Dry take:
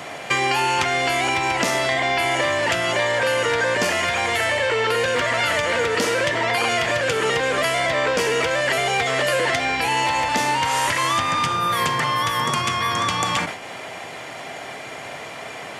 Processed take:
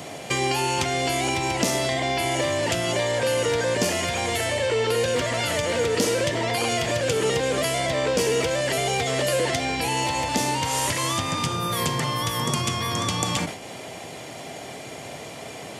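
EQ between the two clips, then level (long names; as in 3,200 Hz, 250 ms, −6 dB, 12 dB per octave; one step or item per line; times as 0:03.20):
parametric band 1,500 Hz −13 dB 2.3 octaves
+3.5 dB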